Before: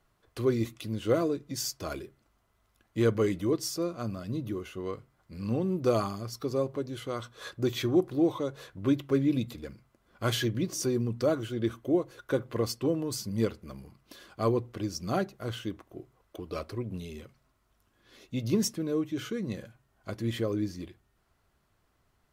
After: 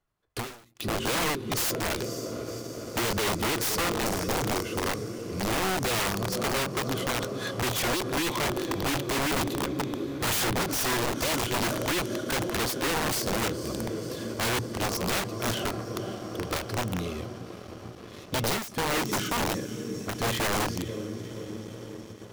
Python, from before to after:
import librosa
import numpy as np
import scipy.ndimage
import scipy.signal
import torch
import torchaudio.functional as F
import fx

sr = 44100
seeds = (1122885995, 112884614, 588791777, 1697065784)

y = fx.comb_fb(x, sr, f0_hz=850.0, decay_s=0.19, harmonics='all', damping=0.0, mix_pct=40)
y = fx.echo_diffused(y, sr, ms=524, feedback_pct=74, wet_db=-12.5)
y = fx.leveller(y, sr, passes=3)
y = (np.mod(10.0 ** (23.0 / 20.0) * y + 1.0, 2.0) - 1.0) / 10.0 ** (23.0 / 20.0)
y = fx.end_taper(y, sr, db_per_s=110.0)